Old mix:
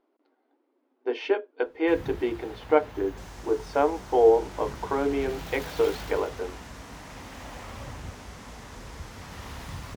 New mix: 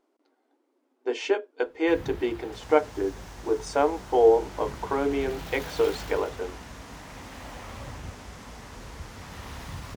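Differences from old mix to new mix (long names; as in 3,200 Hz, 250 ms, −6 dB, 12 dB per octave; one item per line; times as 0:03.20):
speech: remove moving average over 6 samples
second sound: entry −0.65 s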